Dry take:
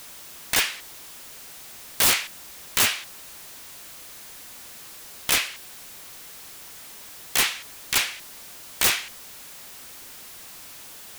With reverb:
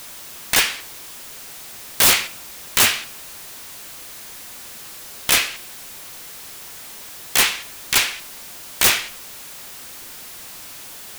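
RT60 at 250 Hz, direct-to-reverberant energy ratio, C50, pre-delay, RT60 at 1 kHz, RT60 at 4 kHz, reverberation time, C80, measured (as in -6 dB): 0.75 s, 11.5 dB, 16.5 dB, 5 ms, 0.60 s, 0.45 s, 0.60 s, 20.0 dB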